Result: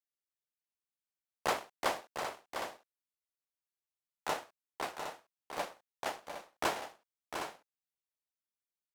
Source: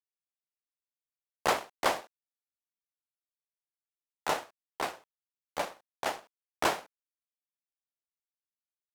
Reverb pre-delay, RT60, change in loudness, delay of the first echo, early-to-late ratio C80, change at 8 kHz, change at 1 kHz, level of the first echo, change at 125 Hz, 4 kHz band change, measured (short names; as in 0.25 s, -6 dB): none, none, -5.5 dB, 0.702 s, none, -4.0 dB, -4.0 dB, -8.0 dB, -4.0 dB, -4.0 dB